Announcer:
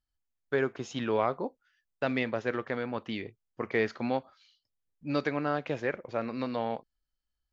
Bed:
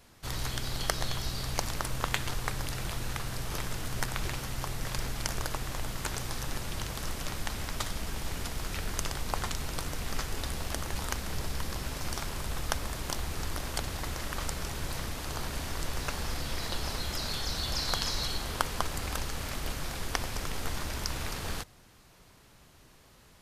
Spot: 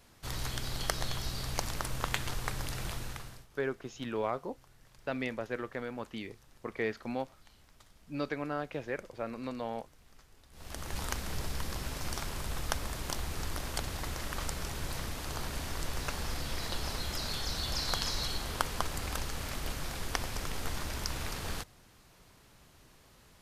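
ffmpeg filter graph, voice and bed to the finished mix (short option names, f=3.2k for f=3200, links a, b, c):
-filter_complex "[0:a]adelay=3050,volume=-5.5dB[a];[1:a]volume=21.5dB,afade=t=out:st=2.89:d=0.58:silence=0.0668344,afade=t=in:st=10.51:d=0.5:silence=0.0630957[b];[a][b]amix=inputs=2:normalize=0"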